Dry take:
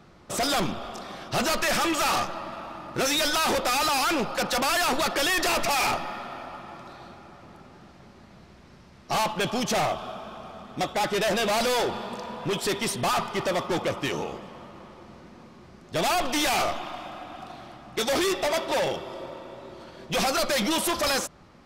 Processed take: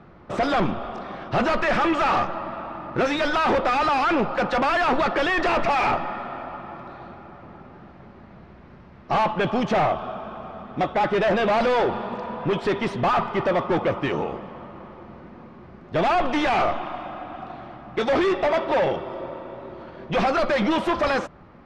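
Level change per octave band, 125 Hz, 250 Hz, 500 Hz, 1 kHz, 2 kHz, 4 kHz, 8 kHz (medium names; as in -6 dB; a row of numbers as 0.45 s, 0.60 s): +5.0 dB, +5.0 dB, +5.0 dB, +4.5 dB, +2.0 dB, -6.0 dB, under -15 dB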